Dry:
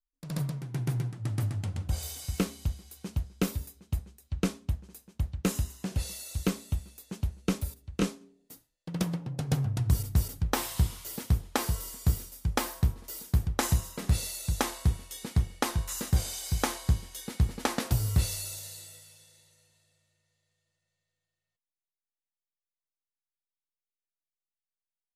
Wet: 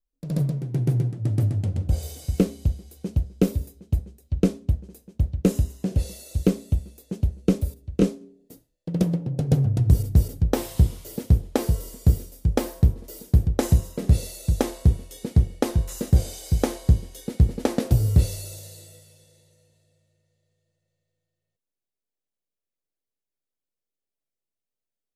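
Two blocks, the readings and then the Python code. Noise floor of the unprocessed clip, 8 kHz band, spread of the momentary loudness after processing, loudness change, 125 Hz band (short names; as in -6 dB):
under -85 dBFS, -2.0 dB, 8 LU, +7.5 dB, +8.0 dB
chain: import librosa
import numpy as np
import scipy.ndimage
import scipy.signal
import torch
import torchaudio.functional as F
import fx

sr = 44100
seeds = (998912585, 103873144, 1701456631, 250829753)

y = fx.low_shelf_res(x, sr, hz=730.0, db=10.0, q=1.5)
y = F.gain(torch.from_numpy(y), -2.0).numpy()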